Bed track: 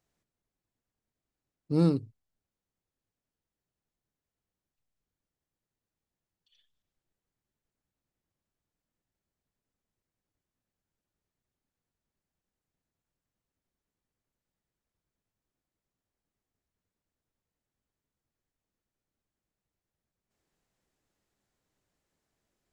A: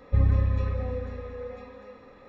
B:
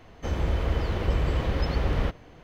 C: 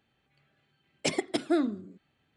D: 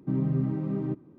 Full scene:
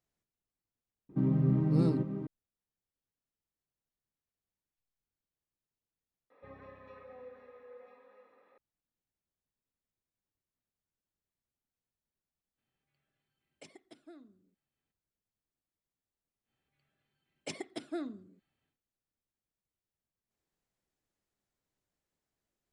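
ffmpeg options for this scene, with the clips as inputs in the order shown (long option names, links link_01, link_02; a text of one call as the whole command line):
ffmpeg -i bed.wav -i cue0.wav -i cue1.wav -i cue2.wav -i cue3.wav -filter_complex "[3:a]asplit=2[link_01][link_02];[0:a]volume=-7.5dB[link_03];[4:a]aecho=1:1:310:0.473[link_04];[1:a]highpass=430,lowpass=2800[link_05];[link_01]acompressor=threshold=-40dB:ratio=2.5:attack=20:release=796:knee=1:detection=rms[link_06];[link_03]asplit=2[link_07][link_08];[link_07]atrim=end=6.304[link_09];[link_05]atrim=end=2.28,asetpts=PTS-STARTPTS,volume=-12.5dB[link_10];[link_08]atrim=start=8.576[link_11];[link_04]atrim=end=1.18,asetpts=PTS-STARTPTS,volume=-1.5dB,afade=type=in:duration=0.004:curve=hsin,afade=type=out:start_time=1.176:duration=0.004:curve=hsin,adelay=1090[link_12];[link_06]atrim=end=2.36,asetpts=PTS-STARTPTS,volume=-15.5dB,afade=type=in:duration=0.02,afade=type=out:start_time=2.34:duration=0.02,adelay=12570[link_13];[link_02]atrim=end=2.36,asetpts=PTS-STARTPTS,volume=-12dB,afade=type=in:duration=0.1,afade=type=out:start_time=2.26:duration=0.1,adelay=16420[link_14];[link_09][link_10]acrossfade=duration=0.004:curve1=hsin:curve2=hsin[link_15];[link_15][link_11]acrossfade=duration=0.004:curve1=hsin:curve2=hsin[link_16];[link_16][link_12][link_13][link_14]amix=inputs=4:normalize=0" out.wav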